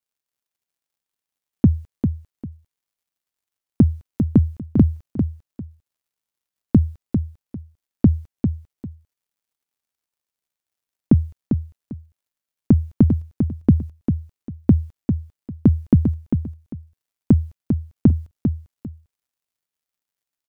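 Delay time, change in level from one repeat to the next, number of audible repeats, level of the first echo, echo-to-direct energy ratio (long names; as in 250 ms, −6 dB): 398 ms, −12.5 dB, 2, −6.5 dB, −6.5 dB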